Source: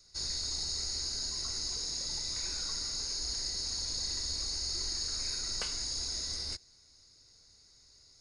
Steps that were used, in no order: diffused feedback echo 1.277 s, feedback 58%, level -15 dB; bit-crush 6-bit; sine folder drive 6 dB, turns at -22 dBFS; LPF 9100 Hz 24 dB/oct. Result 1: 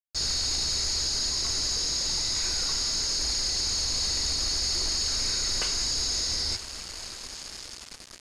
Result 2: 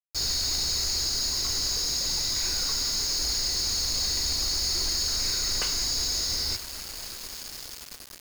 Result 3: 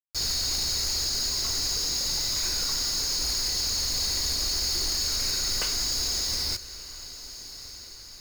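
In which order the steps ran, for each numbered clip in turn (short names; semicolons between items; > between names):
diffused feedback echo > sine folder > bit-crush > LPF; diffused feedback echo > sine folder > LPF > bit-crush; LPF > sine folder > bit-crush > diffused feedback echo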